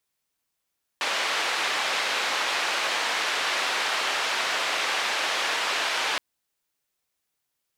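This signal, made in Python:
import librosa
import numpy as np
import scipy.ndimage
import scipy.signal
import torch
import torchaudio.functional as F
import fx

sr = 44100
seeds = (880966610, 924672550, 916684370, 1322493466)

y = fx.band_noise(sr, seeds[0], length_s=5.17, low_hz=580.0, high_hz=3100.0, level_db=-26.5)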